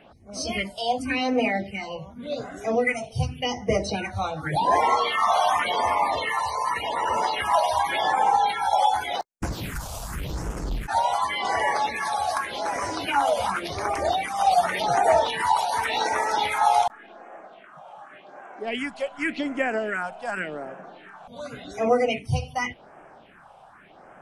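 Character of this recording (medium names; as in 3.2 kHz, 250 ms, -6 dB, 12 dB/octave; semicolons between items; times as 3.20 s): phasing stages 4, 0.88 Hz, lowest notch 300–3900 Hz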